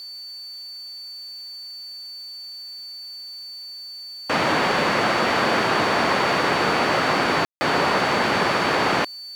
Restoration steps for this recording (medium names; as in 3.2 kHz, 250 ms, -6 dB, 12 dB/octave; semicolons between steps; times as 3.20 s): de-click; band-stop 4.5 kHz, Q 30; room tone fill 7.45–7.61 s; expander -29 dBFS, range -21 dB